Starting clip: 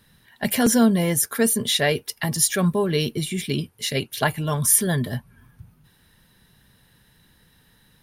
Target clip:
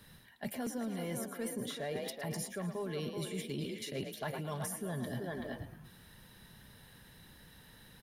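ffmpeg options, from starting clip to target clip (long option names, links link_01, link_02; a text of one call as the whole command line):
ffmpeg -i in.wav -filter_complex "[0:a]equalizer=frequency=610:width_type=o:width=0.77:gain=2.5,asplit=2[link_01][link_02];[link_02]asplit=3[link_03][link_04][link_05];[link_03]adelay=110,afreqshift=37,volume=-12.5dB[link_06];[link_04]adelay=220,afreqshift=74,volume=-21.9dB[link_07];[link_05]adelay=330,afreqshift=111,volume=-31.2dB[link_08];[link_06][link_07][link_08]amix=inputs=3:normalize=0[link_09];[link_01][link_09]amix=inputs=2:normalize=0,acrossover=split=130|1500[link_10][link_11][link_12];[link_10]acompressor=threshold=-44dB:ratio=4[link_13];[link_11]acompressor=threshold=-21dB:ratio=4[link_14];[link_12]acompressor=threshold=-34dB:ratio=4[link_15];[link_13][link_14][link_15]amix=inputs=3:normalize=0,asplit=2[link_16][link_17];[link_17]adelay=380,highpass=300,lowpass=3400,asoftclip=type=hard:threshold=-17.5dB,volume=-7dB[link_18];[link_16][link_18]amix=inputs=2:normalize=0,asoftclip=type=tanh:threshold=-11.5dB,areverse,acompressor=threshold=-37dB:ratio=6,areverse" out.wav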